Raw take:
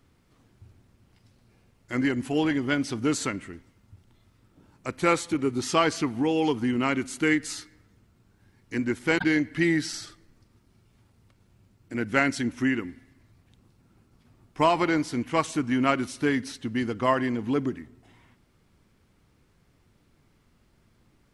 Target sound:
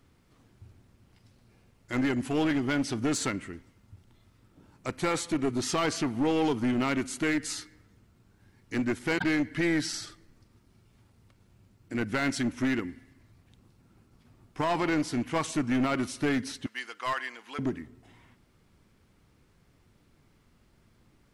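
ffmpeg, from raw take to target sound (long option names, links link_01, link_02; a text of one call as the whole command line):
ffmpeg -i in.wav -filter_complex "[0:a]asettb=1/sr,asplit=3[link_01][link_02][link_03];[link_01]atrim=end=16.664[link_04];[link_02]atrim=start=16.66:end=17.59,asetpts=PTS-STARTPTS,afade=type=in:duration=0.004:curve=qsin,afade=type=out:start_time=0.926:duration=0.004:curve=qsin,highpass=1200[link_05];[link_03]atrim=start=17.586[link_06];[link_04][link_05]acrossfade=duration=0.004:curve1=hsin:curve2=qsin[link_07];[link_07][link_06]acrossfade=duration=0.004:curve1=qsin:curve2=hsin,alimiter=limit=-17dB:level=0:latency=1:release=12,aeval=exprs='clip(val(0),-1,0.0562)':channel_layout=same" out.wav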